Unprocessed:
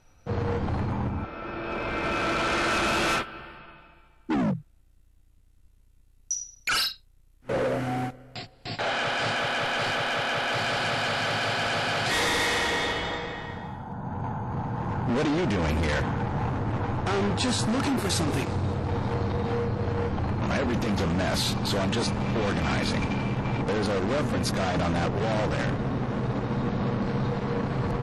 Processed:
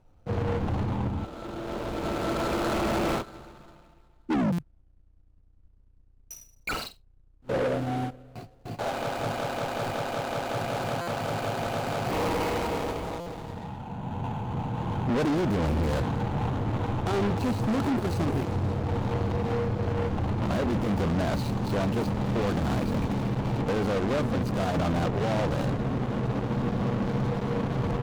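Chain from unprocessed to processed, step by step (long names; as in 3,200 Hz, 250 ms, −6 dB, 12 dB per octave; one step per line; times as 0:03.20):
running median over 25 samples
buffer that repeats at 0:04.52/0:11.01/0:13.20, samples 256, times 10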